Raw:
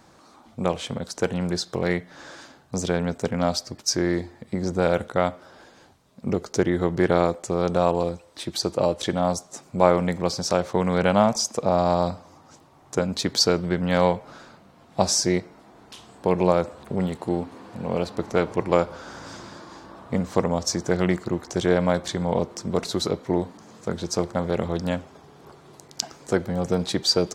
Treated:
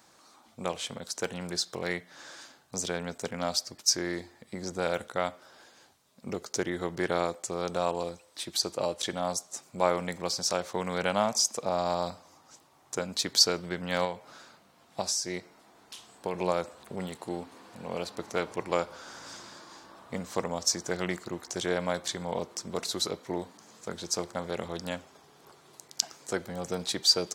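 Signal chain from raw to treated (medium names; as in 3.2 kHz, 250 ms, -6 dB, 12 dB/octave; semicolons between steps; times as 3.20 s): tilt EQ +2.5 dB/octave; 14.04–16.34 s: compression 6:1, threshold -21 dBFS, peak gain reduction 9 dB; trim -6.5 dB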